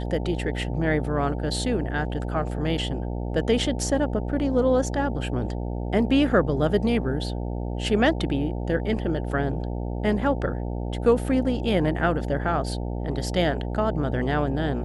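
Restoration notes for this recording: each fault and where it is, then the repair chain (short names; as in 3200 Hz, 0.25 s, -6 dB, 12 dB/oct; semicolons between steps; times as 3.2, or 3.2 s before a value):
buzz 60 Hz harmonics 15 -29 dBFS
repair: de-hum 60 Hz, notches 15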